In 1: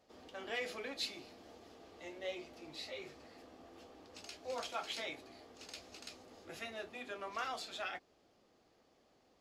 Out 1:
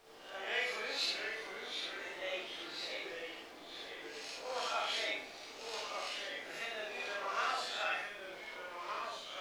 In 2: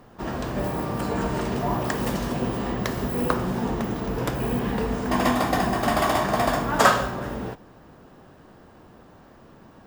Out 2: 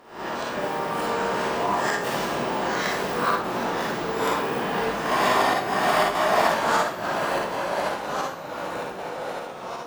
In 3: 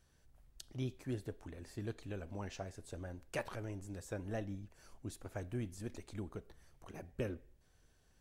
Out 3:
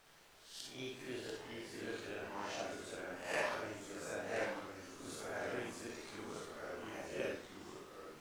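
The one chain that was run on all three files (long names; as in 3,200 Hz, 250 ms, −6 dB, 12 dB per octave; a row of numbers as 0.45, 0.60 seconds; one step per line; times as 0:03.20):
peak hold with a rise ahead of every peak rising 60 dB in 0.52 s
low-shelf EQ 170 Hz −11 dB
gate with flip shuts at −9 dBFS, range −25 dB
background noise pink −64 dBFS
mid-hump overdrive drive 12 dB, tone 4,500 Hz, clips at −5 dBFS
four-comb reverb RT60 0.42 s, DRR −1 dB
delay with pitch and tempo change per echo 617 ms, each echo −2 semitones, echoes 3, each echo −6 dB
level −6 dB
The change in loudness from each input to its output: +5.0, 0.0, +1.0 LU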